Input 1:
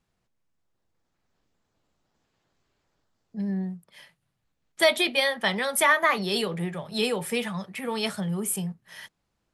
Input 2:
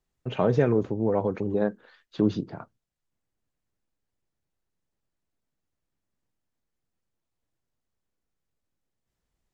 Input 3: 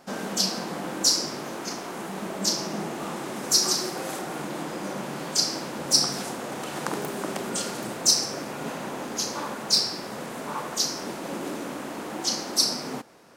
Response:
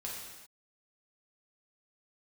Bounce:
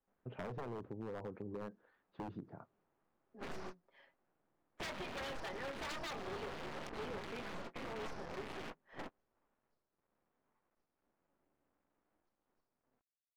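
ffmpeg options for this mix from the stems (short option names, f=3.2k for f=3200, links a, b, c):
-filter_complex "[0:a]highpass=f=300:w=0.5412,highpass=f=300:w=1.3066,lowshelf=f=480:g=4.5,aecho=1:1:7.4:0.78,volume=-11.5dB,asplit=2[a][b];[1:a]volume=-13.5dB[c];[2:a]acompressor=threshold=-31dB:ratio=4,acrusher=bits=3:dc=4:mix=0:aa=0.000001,volume=2dB[d];[b]apad=whole_len=589274[e];[d][e]sidechaingate=range=-46dB:threshold=-51dB:ratio=16:detection=peak[f];[a][c][f]amix=inputs=3:normalize=0,lowpass=1.6k,aeval=exprs='0.0251*(abs(mod(val(0)/0.0251+3,4)-2)-1)':c=same,acompressor=threshold=-41dB:ratio=6"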